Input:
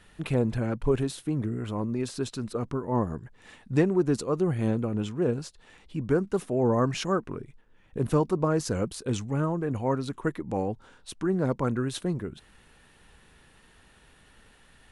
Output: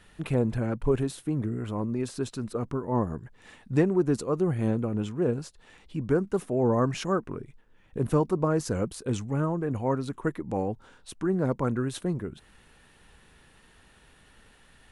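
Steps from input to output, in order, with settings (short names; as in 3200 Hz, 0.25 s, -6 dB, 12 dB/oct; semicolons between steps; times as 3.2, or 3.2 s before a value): dynamic EQ 4100 Hz, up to -4 dB, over -53 dBFS, Q 0.8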